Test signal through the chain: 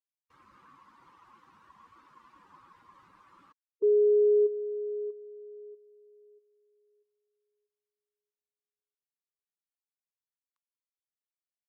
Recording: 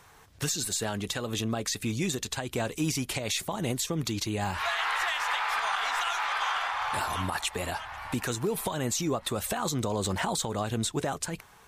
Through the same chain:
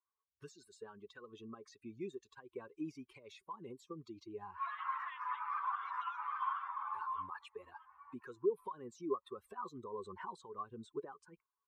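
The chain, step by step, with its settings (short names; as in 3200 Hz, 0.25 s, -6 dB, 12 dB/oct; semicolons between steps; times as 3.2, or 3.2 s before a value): per-bin expansion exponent 2; double band-pass 660 Hz, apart 1.4 oct; gain +2.5 dB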